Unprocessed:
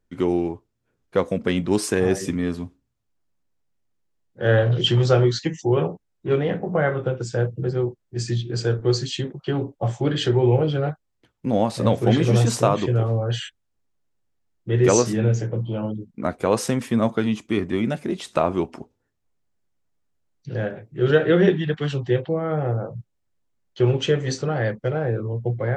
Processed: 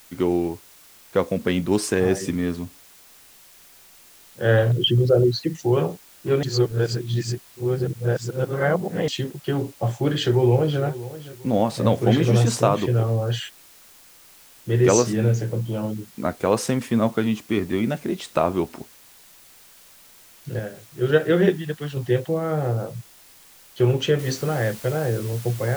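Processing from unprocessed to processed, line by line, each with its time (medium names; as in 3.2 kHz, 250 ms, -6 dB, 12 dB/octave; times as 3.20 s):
4.72–5.55 s: resonances exaggerated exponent 2
6.43–9.08 s: reverse
10.10–10.81 s: echo throw 520 ms, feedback 35%, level -16 dB
20.59–21.97 s: upward expansion, over -25 dBFS
24.19 s: noise floor step -50 dB -41 dB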